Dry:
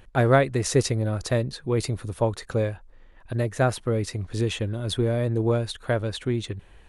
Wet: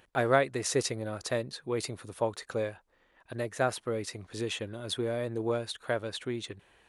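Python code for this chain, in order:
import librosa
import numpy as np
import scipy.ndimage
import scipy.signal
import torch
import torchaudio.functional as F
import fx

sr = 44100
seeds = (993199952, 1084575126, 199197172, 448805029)

y = fx.highpass(x, sr, hz=410.0, slope=6)
y = F.gain(torch.from_numpy(y), -3.5).numpy()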